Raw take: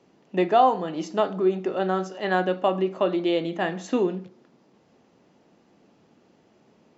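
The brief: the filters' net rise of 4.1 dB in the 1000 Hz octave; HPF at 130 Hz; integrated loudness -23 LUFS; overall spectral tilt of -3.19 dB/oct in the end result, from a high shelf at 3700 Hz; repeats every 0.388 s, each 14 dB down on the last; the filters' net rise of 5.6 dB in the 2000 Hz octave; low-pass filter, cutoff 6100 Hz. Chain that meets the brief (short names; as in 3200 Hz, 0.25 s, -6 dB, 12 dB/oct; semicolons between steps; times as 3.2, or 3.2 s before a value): HPF 130 Hz; LPF 6100 Hz; bell 1000 Hz +5 dB; bell 2000 Hz +4 dB; high shelf 3700 Hz +6 dB; feedback echo 0.388 s, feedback 20%, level -14 dB; gain -1 dB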